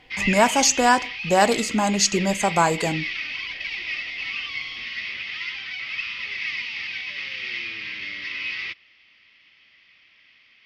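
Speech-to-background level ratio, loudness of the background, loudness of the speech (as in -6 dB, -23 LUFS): 8.0 dB, -28.5 LUFS, -20.5 LUFS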